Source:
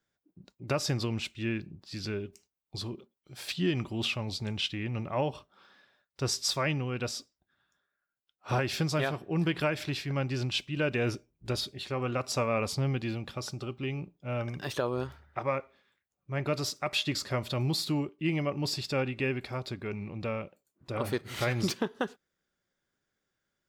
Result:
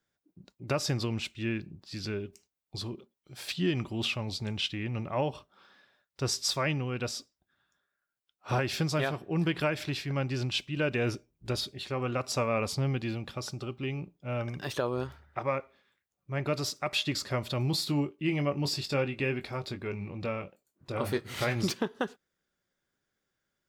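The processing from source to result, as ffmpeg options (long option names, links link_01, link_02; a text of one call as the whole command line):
ffmpeg -i in.wav -filter_complex "[0:a]asettb=1/sr,asplit=3[link_01][link_02][link_03];[link_01]atrim=end=17.714[link_04];[link_02]atrim=start=17.71:end=21.56,asetpts=PTS-STARTPTS,afade=type=in:duration=0.004:curve=qsin,afade=type=out:start_time=3.846:duration=0.004:curve=qsin,asplit=2[link_05][link_06];[link_06]adelay=21,volume=-9dB[link_07];[link_05][link_07]amix=inputs=2:normalize=0,atrim=end_sample=169785[link_08];[link_03]atrim=start=21.556[link_09];[link_04][link_08]acrossfade=duration=0.004:curve1=hsin:curve2=qsin[link_10];[link_10][link_09]acrossfade=duration=0.004:curve1=qsin:curve2=hsin" out.wav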